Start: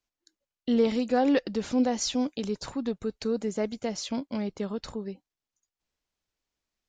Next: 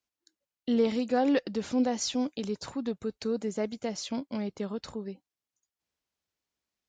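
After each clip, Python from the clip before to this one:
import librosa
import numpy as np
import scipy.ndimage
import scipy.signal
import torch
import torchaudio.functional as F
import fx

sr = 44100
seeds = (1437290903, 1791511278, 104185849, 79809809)

y = scipy.signal.sosfilt(scipy.signal.butter(2, 69.0, 'highpass', fs=sr, output='sos'), x)
y = y * 10.0 ** (-2.0 / 20.0)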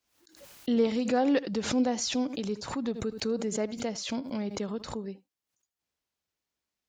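y = x + 10.0 ** (-21.5 / 20.0) * np.pad(x, (int(78 * sr / 1000.0), 0))[:len(x)]
y = fx.pre_swell(y, sr, db_per_s=90.0)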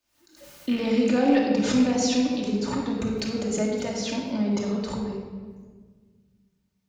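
y = fx.rattle_buzz(x, sr, strikes_db=-31.0, level_db=-28.0)
y = fx.room_shoebox(y, sr, seeds[0], volume_m3=1700.0, walls='mixed', distance_m=2.6)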